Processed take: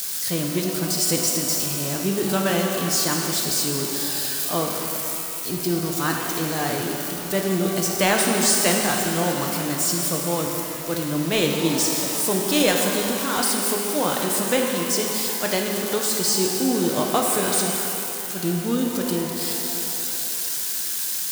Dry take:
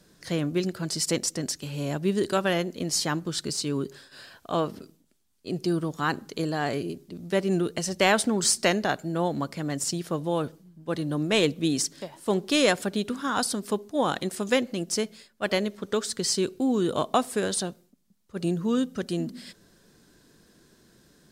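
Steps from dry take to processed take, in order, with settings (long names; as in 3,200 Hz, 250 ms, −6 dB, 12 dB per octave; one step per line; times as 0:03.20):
spike at every zero crossing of −20.5 dBFS
reverb with rising layers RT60 2.9 s, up +12 semitones, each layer −8 dB, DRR 0.5 dB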